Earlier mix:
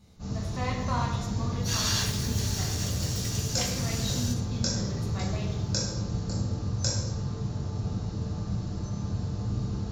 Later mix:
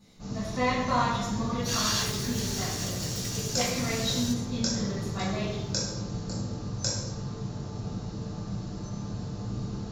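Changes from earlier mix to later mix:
speech: send +7.5 dB; master: add peaking EQ 76 Hz -12.5 dB 0.79 oct

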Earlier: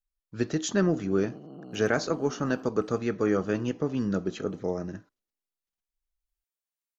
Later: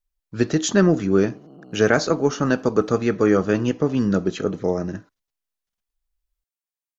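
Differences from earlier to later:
speech +8.0 dB; reverb: off

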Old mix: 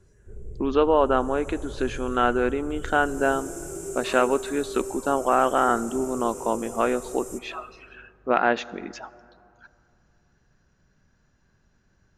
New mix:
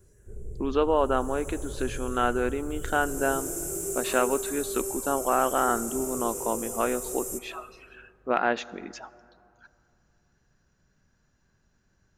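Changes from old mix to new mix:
speech -4.0 dB; master: remove distance through air 58 m

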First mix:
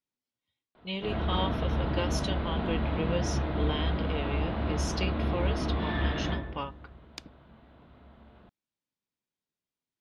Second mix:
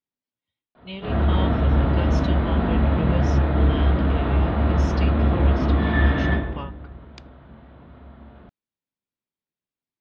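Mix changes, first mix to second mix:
background: send +11.0 dB; master: add distance through air 110 m

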